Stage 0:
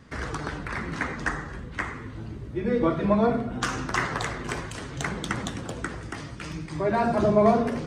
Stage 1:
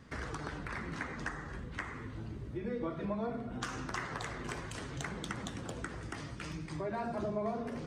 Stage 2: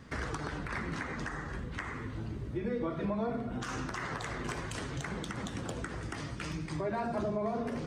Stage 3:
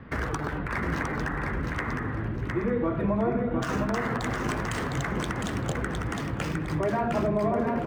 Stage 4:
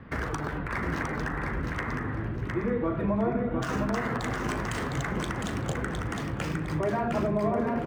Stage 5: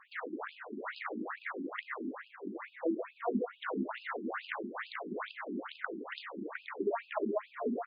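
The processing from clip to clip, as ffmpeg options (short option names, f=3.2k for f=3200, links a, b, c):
-af "acompressor=threshold=-34dB:ratio=2.5,volume=-4.5dB"
-af "alimiter=level_in=4.5dB:limit=-24dB:level=0:latency=1:release=78,volume=-4.5dB,volume=4dB"
-filter_complex "[0:a]acrossover=split=320|2800[a][b][c];[c]aeval=exprs='sgn(val(0))*max(abs(val(0))-0.00237,0)':c=same[d];[a][b][d]amix=inputs=3:normalize=0,aecho=1:1:709|1418|2127|2836:0.631|0.164|0.0427|0.0111,volume=7dB"
-filter_complex "[0:a]asplit=2[a][b];[b]adelay=39,volume=-13dB[c];[a][c]amix=inputs=2:normalize=0,volume=-1.5dB"
-af "bandreject=f=75.43:t=h:w=4,bandreject=f=150.86:t=h:w=4,bandreject=f=226.29:t=h:w=4,bandreject=f=301.72:t=h:w=4,bandreject=f=377.15:t=h:w=4,afftfilt=real='re*between(b*sr/1024,270*pow(3600/270,0.5+0.5*sin(2*PI*2.3*pts/sr))/1.41,270*pow(3600/270,0.5+0.5*sin(2*PI*2.3*pts/sr))*1.41)':imag='im*between(b*sr/1024,270*pow(3600/270,0.5+0.5*sin(2*PI*2.3*pts/sr))/1.41,270*pow(3600/270,0.5+0.5*sin(2*PI*2.3*pts/sr))*1.41)':win_size=1024:overlap=0.75"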